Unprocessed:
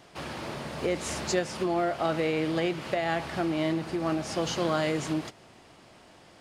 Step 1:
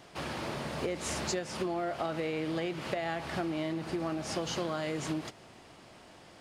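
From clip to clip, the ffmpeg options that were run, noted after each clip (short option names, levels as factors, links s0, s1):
-af "acompressor=threshold=0.0316:ratio=6"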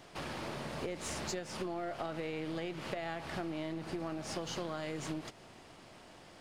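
-af "aeval=exprs='if(lt(val(0),0),0.708*val(0),val(0))':c=same,acompressor=threshold=0.00794:ratio=1.5"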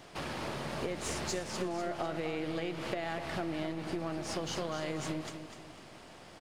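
-af "aecho=1:1:249|498|747|996:0.355|0.142|0.0568|0.0227,volume=1.33"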